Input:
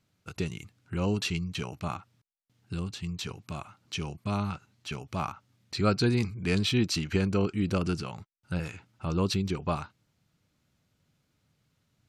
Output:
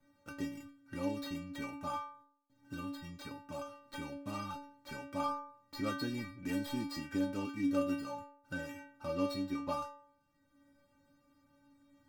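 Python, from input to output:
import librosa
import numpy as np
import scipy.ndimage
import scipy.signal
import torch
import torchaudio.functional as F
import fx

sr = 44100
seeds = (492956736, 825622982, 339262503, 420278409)

y = scipy.ndimage.median_filter(x, 15, mode='constant')
y = fx.stiff_resonator(y, sr, f0_hz=280.0, decay_s=0.56, stiffness=0.008)
y = fx.band_squash(y, sr, depth_pct=40)
y = F.gain(torch.from_numpy(y), 14.5).numpy()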